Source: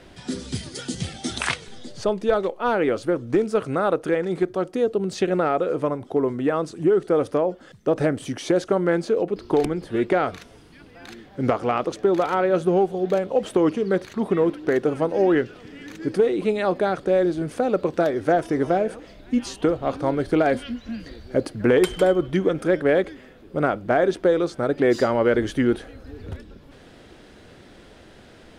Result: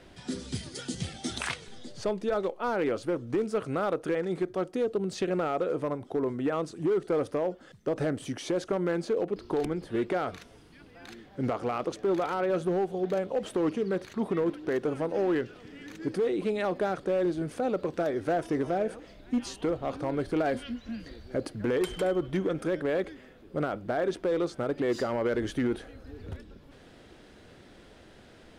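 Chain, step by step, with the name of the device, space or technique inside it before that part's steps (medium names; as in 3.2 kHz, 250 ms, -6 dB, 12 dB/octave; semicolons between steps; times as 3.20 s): limiter into clipper (peak limiter -13.5 dBFS, peak gain reduction 6 dB; hard clipper -16 dBFS, distortion -23 dB); trim -5.5 dB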